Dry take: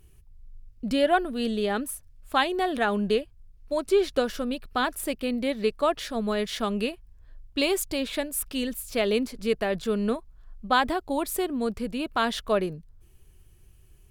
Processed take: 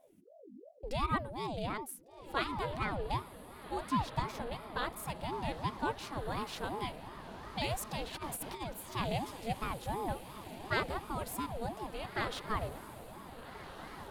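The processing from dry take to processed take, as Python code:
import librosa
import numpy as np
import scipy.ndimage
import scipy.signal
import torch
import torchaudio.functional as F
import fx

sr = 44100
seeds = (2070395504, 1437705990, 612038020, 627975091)

y = fx.echo_diffused(x, sr, ms=1560, feedback_pct=55, wet_db=-11)
y = fx.over_compress(y, sr, threshold_db=-31.0, ratio=-0.5, at=(8.14, 8.6), fade=0.02)
y = fx.ring_lfo(y, sr, carrier_hz=440.0, swing_pct=50, hz=2.8)
y = F.gain(torch.from_numpy(y), -8.0).numpy()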